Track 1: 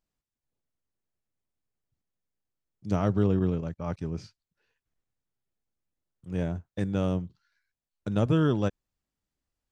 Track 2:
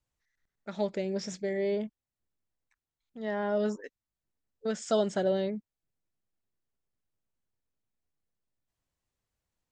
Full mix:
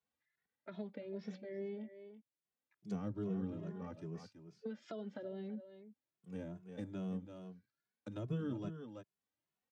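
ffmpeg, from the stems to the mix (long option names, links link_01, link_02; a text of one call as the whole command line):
ffmpeg -i stem1.wav -i stem2.wav -filter_complex "[0:a]highpass=86,volume=-7dB,asplit=3[link_01][link_02][link_03];[link_02]volume=-11dB[link_04];[1:a]lowpass=frequency=3700:width=0.5412,lowpass=frequency=3700:width=1.3066,acompressor=threshold=-33dB:ratio=6,volume=-1dB,asplit=3[link_05][link_06][link_07];[link_05]atrim=end=1.88,asetpts=PTS-STARTPTS,afade=type=out:start_time=1.876:duration=0.004:curve=hsin[link_08];[link_06]atrim=start=1.88:end=2.45,asetpts=PTS-STARTPTS,volume=0[link_09];[link_07]atrim=start=2.45,asetpts=PTS-STARTPTS,afade=type=in:duration=0.004:curve=hsin[link_10];[link_08][link_09][link_10]concat=n=3:v=0:a=1,asplit=2[link_11][link_12];[link_12]volume=-16.5dB[link_13];[link_03]apad=whole_len=428363[link_14];[link_11][link_14]sidechaincompress=threshold=-46dB:ratio=8:attack=16:release=639[link_15];[link_04][link_13]amix=inputs=2:normalize=0,aecho=0:1:331:1[link_16];[link_01][link_15][link_16]amix=inputs=3:normalize=0,highpass=160,acrossover=split=310[link_17][link_18];[link_18]acompressor=threshold=-47dB:ratio=3[link_19];[link_17][link_19]amix=inputs=2:normalize=0,asplit=2[link_20][link_21];[link_21]adelay=2.3,afreqshift=2.4[link_22];[link_20][link_22]amix=inputs=2:normalize=1" out.wav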